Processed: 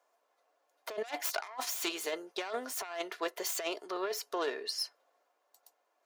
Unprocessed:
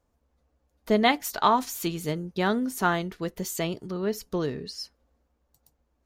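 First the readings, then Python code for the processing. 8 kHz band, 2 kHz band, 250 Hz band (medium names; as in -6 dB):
-1.5 dB, -8.5 dB, -17.0 dB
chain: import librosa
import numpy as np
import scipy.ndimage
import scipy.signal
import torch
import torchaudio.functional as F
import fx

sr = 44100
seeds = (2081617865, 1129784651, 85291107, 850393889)

y = fx.self_delay(x, sr, depth_ms=0.26)
y = scipy.signal.sosfilt(scipy.signal.butter(4, 540.0, 'highpass', fs=sr, output='sos'), y)
y = fx.high_shelf(y, sr, hz=3400.0, db=-5.0)
y = y + 0.37 * np.pad(y, (int(2.9 * sr / 1000.0), 0))[:len(y)]
y = fx.over_compress(y, sr, threshold_db=-37.0, ratio=-1.0)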